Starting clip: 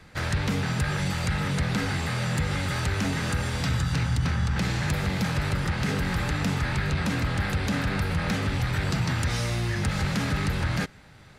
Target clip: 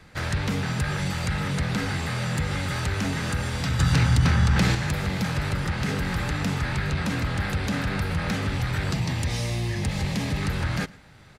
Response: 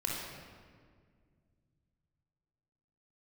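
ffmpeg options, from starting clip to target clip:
-filter_complex "[0:a]asettb=1/sr,asplit=3[a][b][c];[a]atrim=end=3.794[d];[b]atrim=start=3.79:end=4.75,asetpts=PTS-STARTPTS,afade=t=in:d=0.004:c=qsin,afade=t=out:st=0.956:d=0.004:c=qsin,acontrast=48[e];[c]atrim=start=4.746[f];[d][e]acrossfade=d=0.004:c1=hsin:c2=qsin[g];[g][f]acrossfade=d=0.004:c1=qsin:c2=hsin,asettb=1/sr,asplit=3[h][i][j];[h]atrim=end=8.944[k];[i]atrim=start=8.94:end=10.42,asetpts=PTS-STARTPTS,afade=t=in:d=0.004:c=qsin,afade=t=out:st=1.476:d=0.004:c=qsin,equalizer=f=1.4k:w=4:g=-13.5[l];[j]atrim=start=10.416[m];[k][l]acrossfade=d=0.004:c1=hsin:c2=qsin[n];[n][m]acrossfade=d=0.004:c1=qsin:c2=hsin,asplit=2[o][p];[p]adelay=110.8,volume=-23dB,highshelf=f=4k:g=-2.49[q];[o][q]amix=inputs=2:normalize=0"

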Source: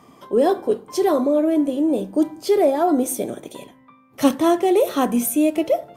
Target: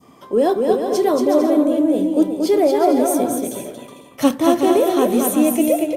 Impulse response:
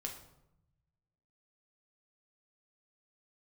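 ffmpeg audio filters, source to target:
-af "adynamicequalizer=threshold=0.0224:dfrequency=1600:dqfactor=0.7:tfrequency=1600:tqfactor=0.7:attack=5:release=100:ratio=0.375:range=2:mode=cutabove:tftype=bell,aecho=1:1:230|368|450.8|500.5|530.3:0.631|0.398|0.251|0.158|0.1,volume=1dB"

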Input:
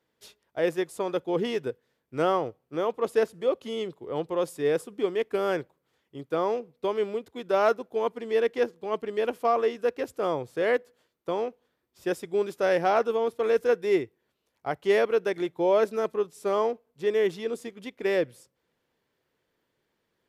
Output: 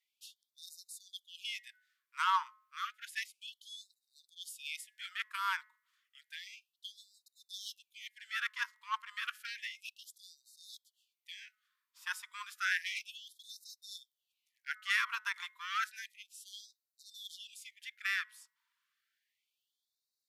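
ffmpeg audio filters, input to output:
-af "bandreject=f=213.4:t=h:w=4,bandreject=f=426.8:t=h:w=4,bandreject=f=640.2:t=h:w=4,bandreject=f=853.6:t=h:w=4,bandreject=f=1.067k:t=h:w=4,bandreject=f=1.2804k:t=h:w=4,bandreject=f=1.4938k:t=h:w=4,bandreject=f=1.7072k:t=h:w=4,bandreject=f=1.9206k:t=h:w=4,bandreject=f=2.134k:t=h:w=4,aeval=exprs='0.266*(cos(1*acos(clip(val(0)/0.266,-1,1)))-cos(1*PI/2))+0.0119*(cos(7*acos(clip(val(0)/0.266,-1,1)))-cos(7*PI/2))':c=same,afftfilt=real='re*gte(b*sr/1024,880*pow(3700/880,0.5+0.5*sin(2*PI*0.31*pts/sr)))':imag='im*gte(b*sr/1024,880*pow(3700/880,0.5+0.5*sin(2*PI*0.31*pts/sr)))':win_size=1024:overlap=0.75,volume=1dB"

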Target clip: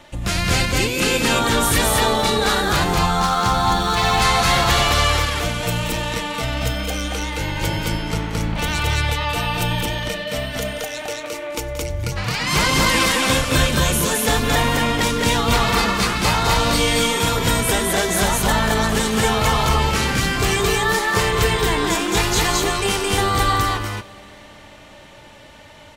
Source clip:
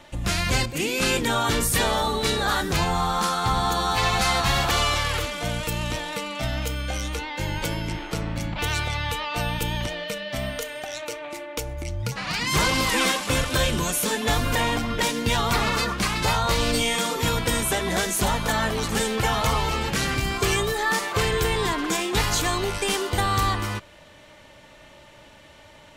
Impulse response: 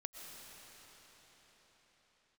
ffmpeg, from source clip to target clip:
-filter_complex "[0:a]aecho=1:1:177.8|218.7:0.251|0.891,asettb=1/sr,asplit=3[a][b][c];[a]atrim=end=3.194[d];[b]atrim=start=3.19:end=4.22,asetpts=PTS-STARTPTS,afade=t=in:d=0.004:c=qsin,afade=t=out:st=1.026:d=0.004:c=qsin,adynamicsmooth=sensitivity=7.5:basefreq=2.8k[e];[c]atrim=start=4.216[f];[d][e]acrossfade=d=0.004:c1=hsin:c2=qsin[g];[g][f]acrossfade=d=0.004:c1=qsin:c2=hsin,asplit=2[h][i];[1:a]atrim=start_sample=2205,adelay=95[j];[i][j]afir=irnorm=-1:irlink=0,volume=-18dB[k];[h][k]amix=inputs=2:normalize=0,volume=2.5dB"

